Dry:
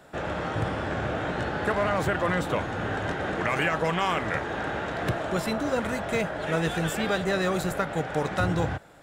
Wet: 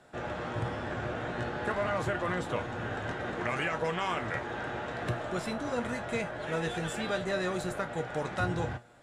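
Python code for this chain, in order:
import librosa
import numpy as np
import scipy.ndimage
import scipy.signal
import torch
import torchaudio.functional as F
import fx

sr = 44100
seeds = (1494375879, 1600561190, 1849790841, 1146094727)

y = scipy.signal.sosfilt(scipy.signal.butter(4, 11000.0, 'lowpass', fs=sr, output='sos'), x)
y = fx.comb_fb(y, sr, f0_hz=120.0, decay_s=0.21, harmonics='all', damping=0.0, mix_pct=70)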